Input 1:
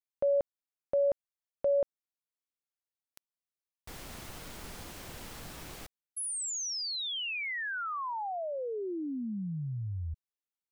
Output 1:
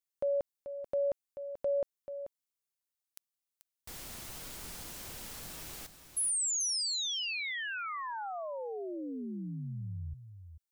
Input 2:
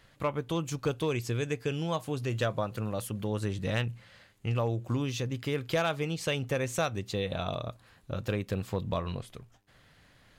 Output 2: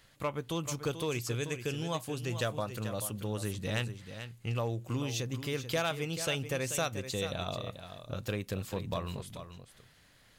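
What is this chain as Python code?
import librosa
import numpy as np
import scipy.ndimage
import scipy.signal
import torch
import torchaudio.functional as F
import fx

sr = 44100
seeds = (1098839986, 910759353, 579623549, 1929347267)

p1 = fx.high_shelf(x, sr, hz=3900.0, db=9.5)
p2 = p1 + fx.echo_single(p1, sr, ms=436, db=-10.5, dry=0)
y = p2 * 10.0 ** (-4.0 / 20.0)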